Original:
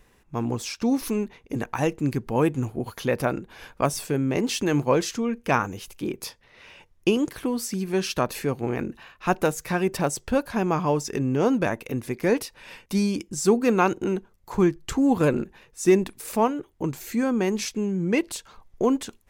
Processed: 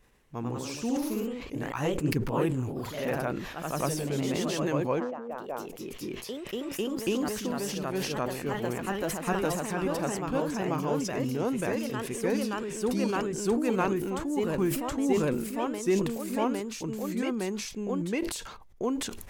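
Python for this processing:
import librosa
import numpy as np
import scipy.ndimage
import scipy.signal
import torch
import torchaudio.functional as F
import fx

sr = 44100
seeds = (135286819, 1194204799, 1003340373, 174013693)

y = fx.bandpass_q(x, sr, hz=fx.line((4.99, 290.0), (5.9, 840.0)), q=2.9, at=(4.99, 5.9), fade=0.02)
y = fx.echo_pitch(y, sr, ms=115, semitones=1, count=3, db_per_echo=-3.0)
y = fx.sustainer(y, sr, db_per_s=51.0)
y = F.gain(torch.from_numpy(y), -8.5).numpy()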